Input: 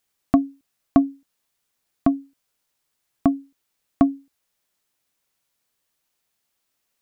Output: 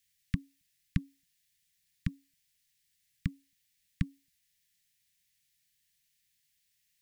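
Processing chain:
Chebyshev band-stop filter 180–1,800 Hz, order 4
level +1 dB

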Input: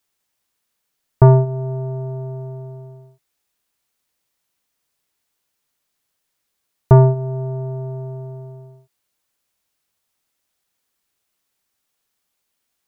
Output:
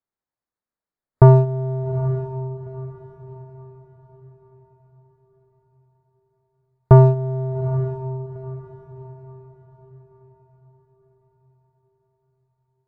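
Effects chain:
adaptive Wiener filter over 15 samples
noise reduction from a noise print of the clip's start 9 dB
on a send: feedback delay with all-pass diffusion 833 ms, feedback 40%, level −14 dB

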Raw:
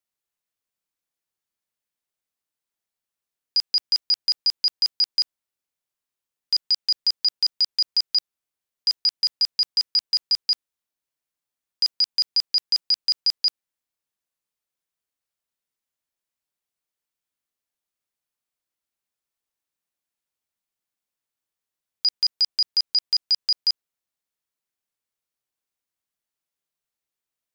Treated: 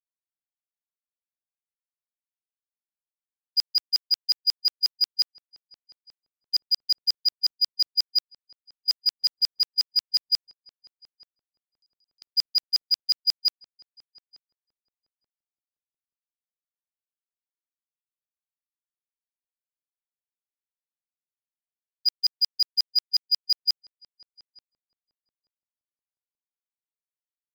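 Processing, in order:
0:10.41–0:12.22: parametric band 1,900 Hz −14 dB 2.6 octaves
noise gate −19 dBFS, range −47 dB
in parallel at −4.5 dB: hard clipping −30 dBFS, distortion −7 dB
on the sum: feedback echo with a low-pass in the loop 881 ms, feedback 17%, low-pass 1,000 Hz, level −15.5 dB

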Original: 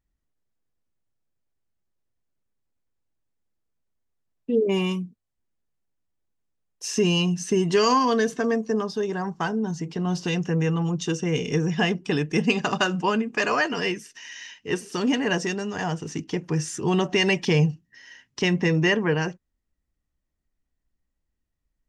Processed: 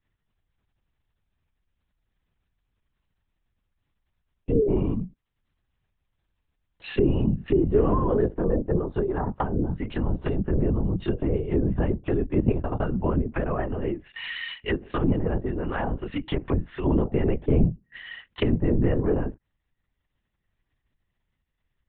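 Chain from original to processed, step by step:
linear-prediction vocoder at 8 kHz whisper
tilt shelving filter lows −4 dB, about 780 Hz
treble cut that deepens with the level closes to 470 Hz, closed at −24 dBFS
level +4.5 dB

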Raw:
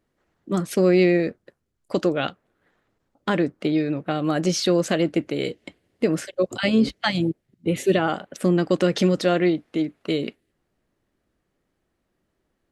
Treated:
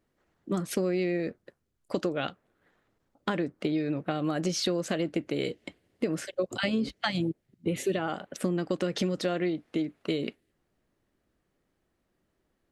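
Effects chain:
downward compressor, threshold −23 dBFS, peak gain reduction 10 dB
level −2 dB

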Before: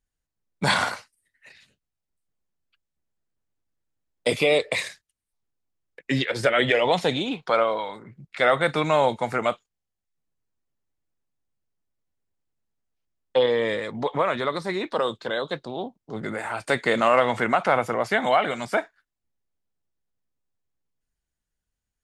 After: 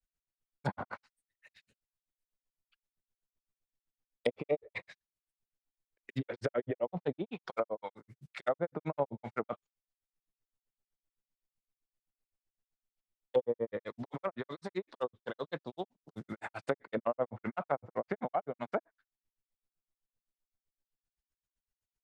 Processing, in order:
noise that follows the level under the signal 25 dB
granular cloud 81 ms, grains 7.8 per second, spray 11 ms, pitch spread up and down by 0 semitones
treble cut that deepens with the level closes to 660 Hz, closed at −24 dBFS
level −5 dB

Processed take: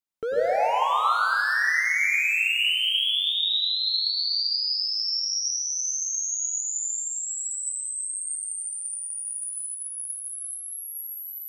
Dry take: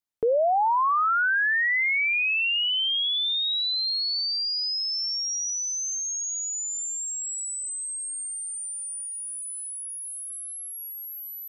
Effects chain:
gain into a clipping stage and back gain 23 dB
dense smooth reverb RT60 1.7 s, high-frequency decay 0.9×, pre-delay 85 ms, DRR −3 dB
level −3 dB

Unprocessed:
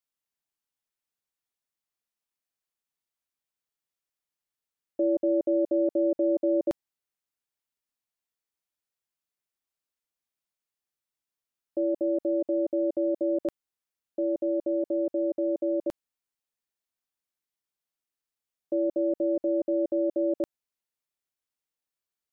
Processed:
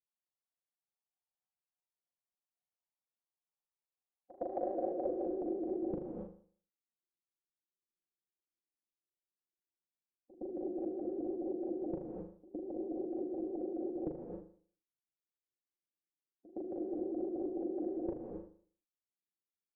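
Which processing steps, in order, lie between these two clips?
gate on every frequency bin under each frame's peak −15 dB weak
comb filter 6.3 ms, depth 59%
in parallel at −7.5 dB: wrap-around overflow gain 36.5 dB
on the sum: echo ahead of the sound 129 ms −17 dB
speed change +13%
on a send: flutter between parallel walls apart 6.7 metres, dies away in 0.49 s
on the sum: reverb whose tail is shaped and stops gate 300 ms rising, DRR 1 dB
low-pass filter sweep 850 Hz → 360 Hz, 0:04.18–0:05.66
pitch modulation by a square or saw wave saw up 5.9 Hz, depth 100 cents
level +3 dB

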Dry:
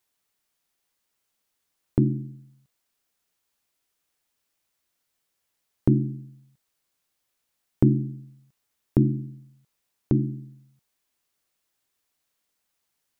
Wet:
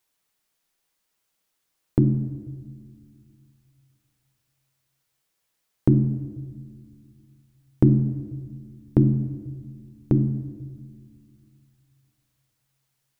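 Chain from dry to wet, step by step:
rectangular room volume 2,100 cubic metres, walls mixed, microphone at 0.61 metres
level +1.5 dB

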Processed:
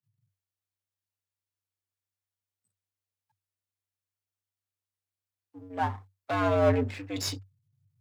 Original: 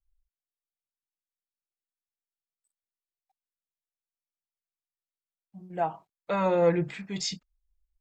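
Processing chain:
gain on one half-wave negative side −12 dB
frequency shifter +96 Hz
level +2.5 dB

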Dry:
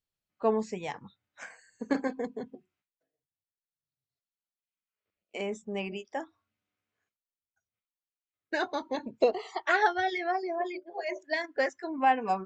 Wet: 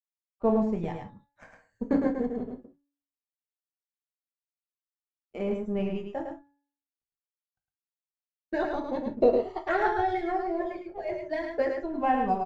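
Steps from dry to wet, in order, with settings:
mu-law and A-law mismatch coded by A
spectral tilt −4.5 dB per octave
hum removal 283.7 Hz, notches 7
on a send: single-tap delay 107 ms −5 dB
on the sum: reverb whose tail is shaped and stops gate 90 ms falling, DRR 3.5 dB
level −2.5 dB

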